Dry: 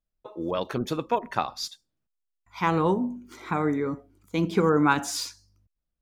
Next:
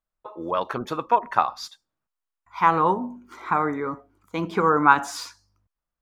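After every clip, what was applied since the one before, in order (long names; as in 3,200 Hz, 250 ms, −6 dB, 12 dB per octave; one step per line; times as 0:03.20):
parametric band 1,100 Hz +14 dB 1.8 octaves
level −5 dB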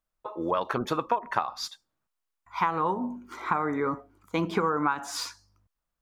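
downward compressor 12 to 1, threshold −24 dBFS, peak gain reduction 16 dB
level +2 dB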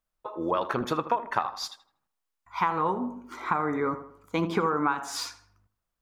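tape delay 80 ms, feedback 47%, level −11.5 dB, low-pass 2,000 Hz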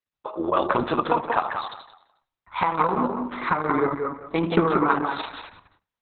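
tape delay 182 ms, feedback 27%, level −3.5 dB, low-pass 2,900 Hz
noise gate with hold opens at −51 dBFS
level +5 dB
Opus 6 kbit/s 48,000 Hz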